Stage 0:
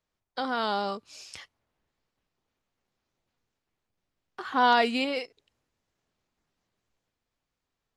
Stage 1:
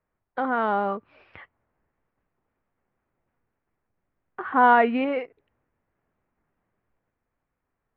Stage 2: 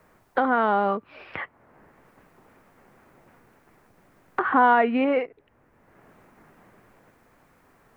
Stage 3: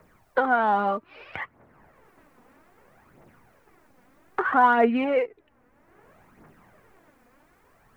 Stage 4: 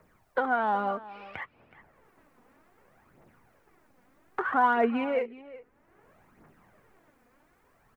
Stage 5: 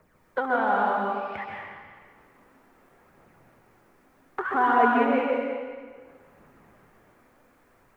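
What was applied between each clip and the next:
inverse Chebyshev low-pass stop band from 6500 Hz, stop band 60 dB; gain +5 dB
three-band squash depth 70%; gain +2.5 dB
phaser 0.62 Hz, delay 4.2 ms, feedback 51%; gain -2 dB
echo 0.372 s -18 dB; gain -5 dB
plate-style reverb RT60 1.6 s, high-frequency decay 0.9×, pre-delay 0.115 s, DRR -2 dB

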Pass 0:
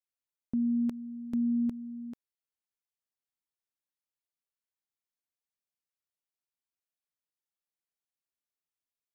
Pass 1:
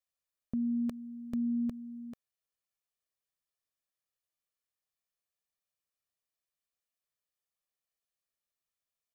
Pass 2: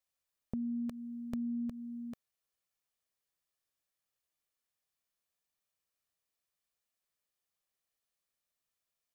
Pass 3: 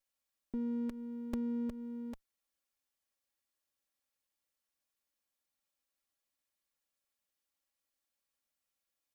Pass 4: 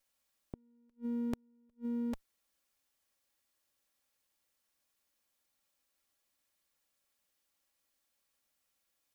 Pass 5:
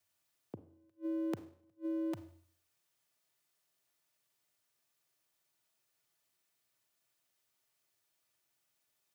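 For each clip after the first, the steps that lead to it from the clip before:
comb 1.7 ms, depth 47%
dynamic EQ 330 Hz, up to -5 dB, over -50 dBFS, Q 1.9; compressor, threshold -37 dBFS, peak gain reduction 5.5 dB; gain +2.5 dB
minimum comb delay 3.6 ms; gain +1 dB
flipped gate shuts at -35 dBFS, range -39 dB; gain +7 dB
Schroeder reverb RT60 0.55 s, combs from 33 ms, DRR 12 dB; frequency shift +87 Hz

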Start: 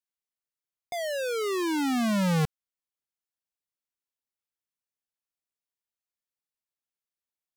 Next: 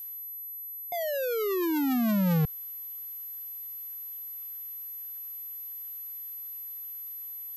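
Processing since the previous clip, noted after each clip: formant sharpening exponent 1.5; reverse; upward compressor, threshold -38 dBFS; reverse; whine 12000 Hz -37 dBFS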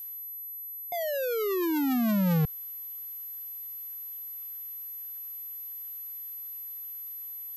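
nothing audible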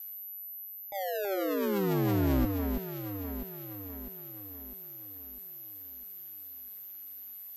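ring modulator 99 Hz; echo with dull and thin repeats by turns 0.326 s, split 2200 Hz, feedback 70%, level -4.5 dB; attack slew limiter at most 190 dB/s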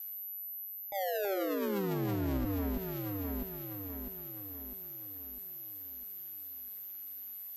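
limiter -27 dBFS, peak gain reduction 8.5 dB; on a send at -17 dB: reverb, pre-delay 3 ms

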